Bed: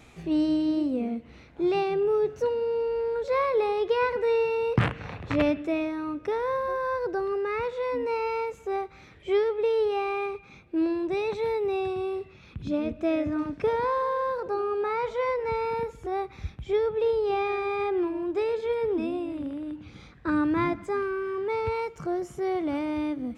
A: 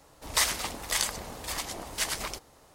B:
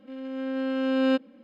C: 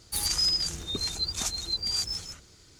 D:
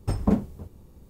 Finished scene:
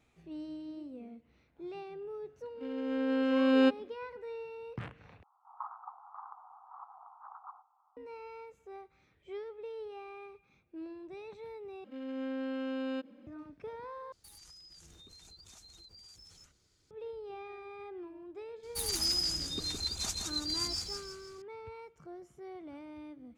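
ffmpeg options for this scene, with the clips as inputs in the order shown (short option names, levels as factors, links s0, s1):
-filter_complex "[2:a]asplit=2[s0][s1];[3:a]asplit=2[s2][s3];[0:a]volume=0.119[s4];[1:a]asuperpass=centerf=1000:order=12:qfactor=1.7[s5];[s1]acompressor=threshold=0.0355:ratio=6:attack=3.2:release=140:knee=1:detection=peak[s6];[s2]acompressor=threshold=0.0112:ratio=10:attack=17:release=36:knee=1:detection=rms[s7];[s3]aecho=1:1:165|330|495|660|825:0.596|0.226|0.086|0.0327|0.0124[s8];[s4]asplit=4[s9][s10][s11][s12];[s9]atrim=end=5.234[s13];[s5]atrim=end=2.74,asetpts=PTS-STARTPTS,volume=0.447[s14];[s10]atrim=start=7.966:end=11.844[s15];[s6]atrim=end=1.43,asetpts=PTS-STARTPTS,volume=0.631[s16];[s11]atrim=start=13.266:end=14.124[s17];[s7]atrim=end=2.79,asetpts=PTS-STARTPTS,volume=0.15[s18];[s12]atrim=start=16.906[s19];[s0]atrim=end=1.43,asetpts=PTS-STARTPTS,volume=0.841,afade=t=in:d=0.1,afade=t=out:st=1.33:d=0.1,adelay=2530[s20];[s8]atrim=end=2.79,asetpts=PTS-STARTPTS,volume=0.473,afade=t=in:d=0.004:c=hsin,afade=t=out:st=2.786:d=0.004:c=hsin,adelay=18630[s21];[s13][s14]acrossfade=d=0.004:c1=hsin:c2=hsin[s22];[s22][s15]acrossfade=d=0.004:c1=hsin:c2=hsin[s23];[s23][s16]acrossfade=d=0.004:c1=hsin:c2=hsin[s24];[s24][s17]acrossfade=d=0.004:c1=hsin:c2=hsin[s25];[s25][s18]acrossfade=d=0.004:c1=hsin:c2=hsin[s26];[s26][s19]acrossfade=d=0.004:c1=hsin:c2=hsin[s27];[s27][s20][s21]amix=inputs=3:normalize=0"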